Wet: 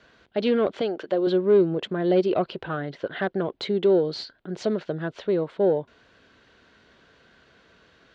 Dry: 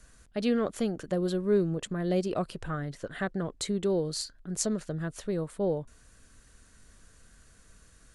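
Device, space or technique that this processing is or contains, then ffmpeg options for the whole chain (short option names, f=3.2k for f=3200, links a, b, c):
overdrive pedal into a guitar cabinet: -filter_complex "[0:a]asettb=1/sr,asplit=3[a][b][c];[a]atrim=end=0.814[d];[b]atrim=start=0.81:end=1.27,asetpts=PTS-STARTPTS,afade=t=in:d=0.004:c=qsin,afade=t=out:st=0.456:d=0.004:c=qsin,bass=f=250:g=-13,treble=f=4k:g=3[e];[c]atrim=start=1.266[f];[d][e]acrossfade=d=0.004:c1=hsin:c2=qsin[g];[g][f]acrossfade=d=0.004:c1=qsin:c2=hsin,asplit=2[h][i];[i]highpass=f=720:p=1,volume=18dB,asoftclip=type=tanh:threshold=-9.5dB[j];[h][j]amix=inputs=2:normalize=0,lowpass=f=5.9k:p=1,volume=-6dB,highpass=81,equalizer=f=370:t=q:w=4:g=5,equalizer=f=1.2k:t=q:w=4:g=-7,equalizer=f=1.8k:t=q:w=4:g=-6,equalizer=f=2.5k:t=q:w=4:g=-4,lowpass=f=3.6k:w=0.5412,lowpass=f=3.6k:w=1.3066"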